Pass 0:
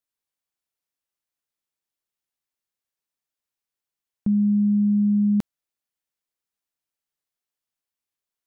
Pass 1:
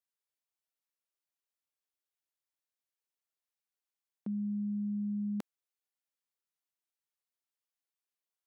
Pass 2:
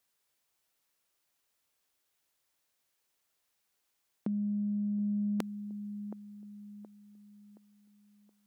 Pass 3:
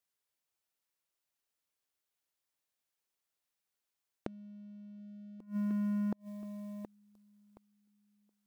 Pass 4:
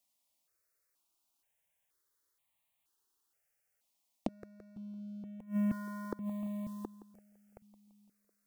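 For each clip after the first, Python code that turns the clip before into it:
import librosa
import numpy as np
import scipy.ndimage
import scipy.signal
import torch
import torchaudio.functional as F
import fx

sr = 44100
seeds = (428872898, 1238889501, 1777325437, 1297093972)

y1 = scipy.signal.sosfilt(scipy.signal.butter(2, 330.0, 'highpass', fs=sr, output='sos'), x)
y1 = F.gain(torch.from_numpy(y1), -6.5).numpy()
y2 = fx.echo_wet_bandpass(y1, sr, ms=722, feedback_pct=40, hz=430.0, wet_db=-16.5)
y2 = fx.over_compress(y2, sr, threshold_db=-40.0, ratio=-1.0)
y2 = F.gain(torch.from_numpy(y2), 8.5).numpy()
y3 = fx.leveller(y2, sr, passes=3)
y3 = fx.gate_flip(y3, sr, shuts_db=-20.0, range_db=-25)
y3 = F.gain(torch.from_numpy(y3), -3.5).numpy()
y4 = fx.echo_feedback(y3, sr, ms=169, feedback_pct=43, wet_db=-15.5)
y4 = fx.phaser_held(y4, sr, hz=2.1, low_hz=410.0, high_hz=1500.0)
y4 = F.gain(torch.from_numpy(y4), 8.0).numpy()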